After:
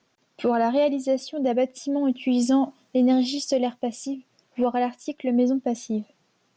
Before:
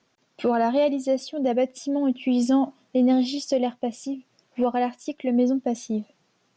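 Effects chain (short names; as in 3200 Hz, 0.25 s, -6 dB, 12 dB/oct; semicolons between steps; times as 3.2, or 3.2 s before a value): 2.08–4.15 high shelf 7100 Hz +9 dB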